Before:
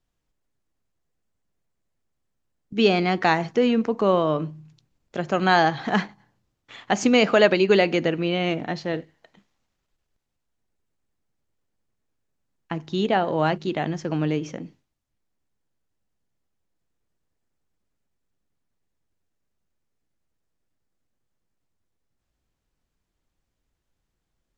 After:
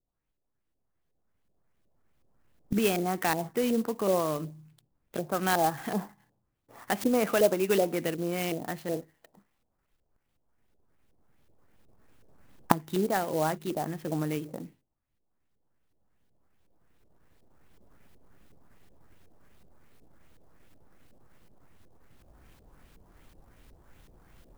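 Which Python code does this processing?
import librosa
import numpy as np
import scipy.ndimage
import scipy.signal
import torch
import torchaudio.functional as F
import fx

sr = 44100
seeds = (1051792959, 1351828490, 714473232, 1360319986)

y = fx.recorder_agc(x, sr, target_db=-12.0, rise_db_per_s=7.9, max_gain_db=30)
y = fx.filter_lfo_lowpass(y, sr, shape='saw_up', hz=2.7, low_hz=460.0, high_hz=5800.0, q=1.6)
y = fx.clock_jitter(y, sr, seeds[0], jitter_ms=0.048)
y = F.gain(torch.from_numpy(y), -8.5).numpy()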